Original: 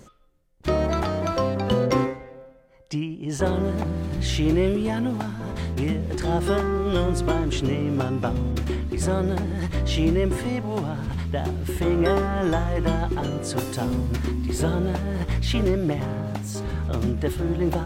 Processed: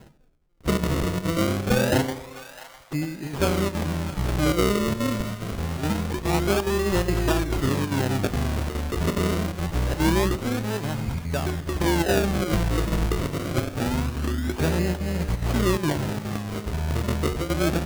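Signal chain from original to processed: decimation with a swept rate 37×, swing 100% 0.25 Hz; chopper 2.4 Hz, depth 60%, duty 85%; split-band echo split 680 Hz, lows 91 ms, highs 0.656 s, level -15 dB

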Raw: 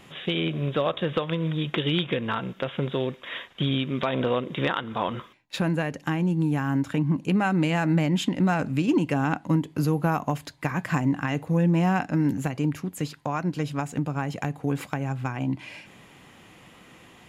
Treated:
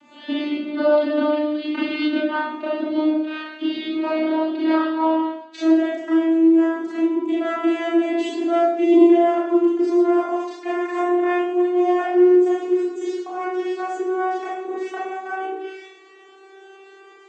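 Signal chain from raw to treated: vocoder on a gliding note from D4, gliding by +5 st; Schroeder reverb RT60 0.76 s, combs from 25 ms, DRR -8 dB

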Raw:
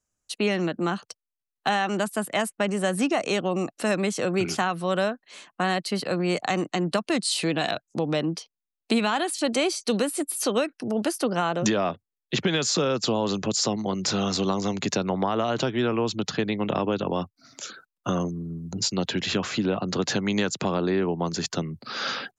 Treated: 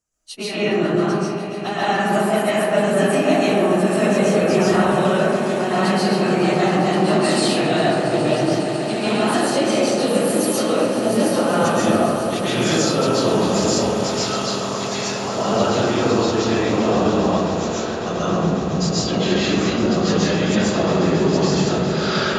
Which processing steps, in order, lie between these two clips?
phase scrambler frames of 50 ms; compressor 2.5:1, threshold -27 dBFS, peak gain reduction 7.5 dB; 13.74–15.24 HPF 1100 Hz 12 dB/oct; swelling echo 0.137 s, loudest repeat 8, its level -17 dB; digital reverb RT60 2.3 s, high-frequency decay 0.25×, pre-delay 95 ms, DRR -9.5 dB

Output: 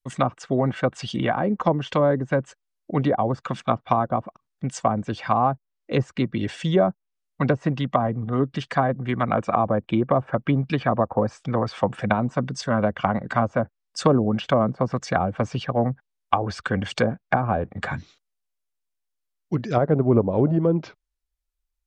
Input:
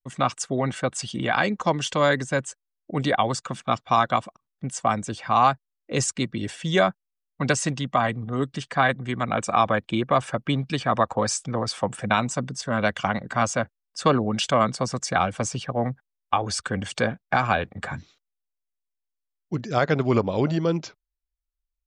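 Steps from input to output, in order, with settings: treble ducked by the level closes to 670 Hz, closed at -18.5 dBFS; gain +3.5 dB

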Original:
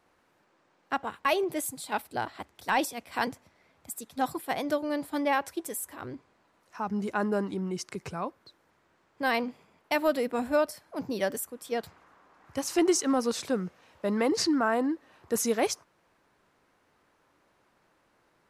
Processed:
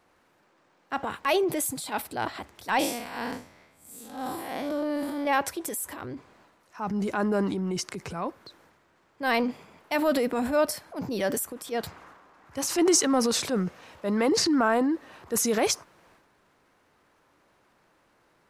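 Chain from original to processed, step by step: 2.79–5.27 time blur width 0.148 s; transient shaper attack -5 dB, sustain +7 dB; gain +3 dB

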